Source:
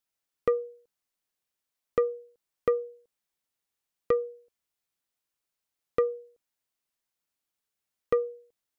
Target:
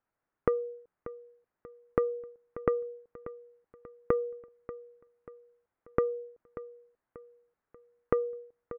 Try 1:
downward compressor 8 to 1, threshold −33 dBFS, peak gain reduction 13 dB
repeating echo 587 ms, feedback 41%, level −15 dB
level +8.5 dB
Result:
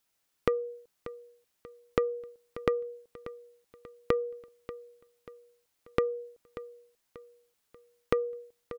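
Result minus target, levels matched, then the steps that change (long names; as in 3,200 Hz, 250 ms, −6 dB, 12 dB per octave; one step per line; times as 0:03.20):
2,000 Hz band +4.5 dB
add after downward compressor: low-pass filter 1,700 Hz 24 dB per octave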